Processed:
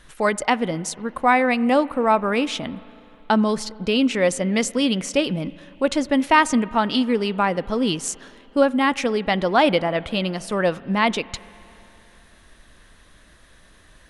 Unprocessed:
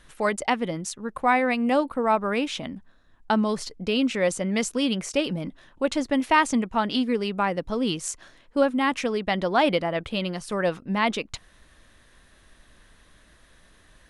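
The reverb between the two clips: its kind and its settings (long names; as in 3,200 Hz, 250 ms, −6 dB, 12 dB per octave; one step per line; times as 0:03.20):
spring reverb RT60 3.1 s, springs 37/49 ms, chirp 50 ms, DRR 19.5 dB
level +4 dB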